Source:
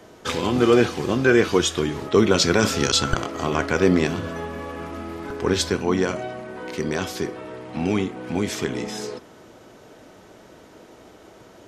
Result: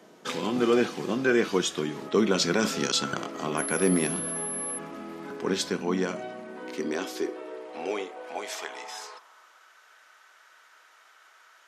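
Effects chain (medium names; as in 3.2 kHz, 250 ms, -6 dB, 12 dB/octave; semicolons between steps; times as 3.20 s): high-pass sweep 180 Hz -> 1.4 kHz, 6.23–9.69 s; bass shelf 210 Hz -10.5 dB; 3.57–4.77 s: whistle 11 kHz -25 dBFS; trim -6 dB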